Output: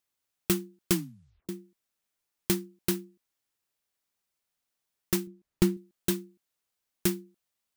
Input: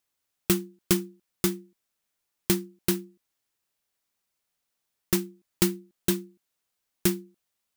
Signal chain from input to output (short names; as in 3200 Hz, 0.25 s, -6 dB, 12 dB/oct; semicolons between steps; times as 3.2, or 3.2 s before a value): 0.92 tape stop 0.57 s; 5.27–5.77 tilt -2 dB/oct; gain -3 dB